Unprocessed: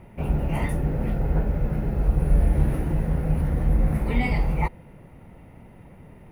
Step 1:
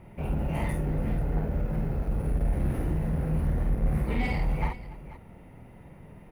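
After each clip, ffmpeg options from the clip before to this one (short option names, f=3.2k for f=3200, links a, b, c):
-filter_complex "[0:a]asoftclip=type=tanh:threshold=-19dB,asplit=2[a][b];[b]aecho=0:1:51|288|489:0.668|0.112|0.168[c];[a][c]amix=inputs=2:normalize=0,volume=-3.5dB"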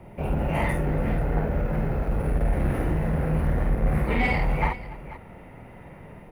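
-filter_complex "[0:a]equalizer=f=590:t=o:w=1.6:g=5,acrossover=split=160|1300|2500[a][b][c][d];[c]dynaudnorm=f=220:g=3:m=9dB[e];[a][b][e][d]amix=inputs=4:normalize=0,volume=2.5dB"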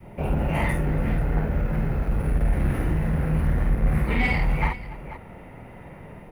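-af "adynamicequalizer=threshold=0.00891:dfrequency=580:dqfactor=0.8:tfrequency=580:tqfactor=0.8:attack=5:release=100:ratio=0.375:range=3:mode=cutabove:tftype=bell,volume=2dB"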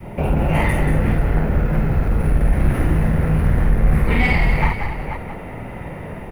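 -filter_complex "[0:a]asplit=2[a][b];[b]acompressor=threshold=-31dB:ratio=6,volume=3dB[c];[a][c]amix=inputs=2:normalize=0,asplit=5[d][e][f][g][h];[e]adelay=184,afreqshift=-57,volume=-6.5dB[i];[f]adelay=368,afreqshift=-114,volume=-16.1dB[j];[g]adelay=552,afreqshift=-171,volume=-25.8dB[k];[h]adelay=736,afreqshift=-228,volume=-35.4dB[l];[d][i][j][k][l]amix=inputs=5:normalize=0,volume=2.5dB"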